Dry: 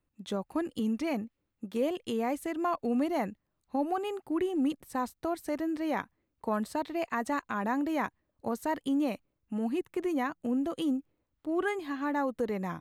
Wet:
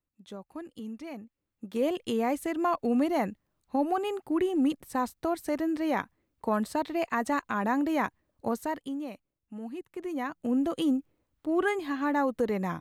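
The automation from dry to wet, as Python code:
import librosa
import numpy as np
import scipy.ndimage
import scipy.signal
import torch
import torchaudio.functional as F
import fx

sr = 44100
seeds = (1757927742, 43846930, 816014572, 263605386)

y = fx.gain(x, sr, db=fx.line((1.2, -9.0), (1.89, 3.0), (8.52, 3.0), (9.0, -7.5), (9.86, -7.5), (10.58, 3.5)))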